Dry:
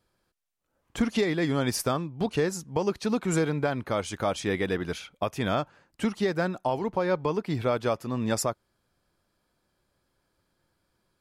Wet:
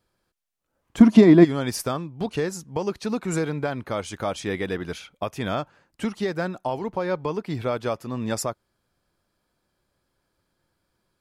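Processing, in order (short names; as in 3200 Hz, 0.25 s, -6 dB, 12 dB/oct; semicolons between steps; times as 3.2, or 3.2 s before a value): 0.99–1.43 small resonant body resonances 210/310/650/960 Hz, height 14 dB -> 18 dB, ringing for 35 ms; 3.04–3.44 notch 3200 Hz, Q 11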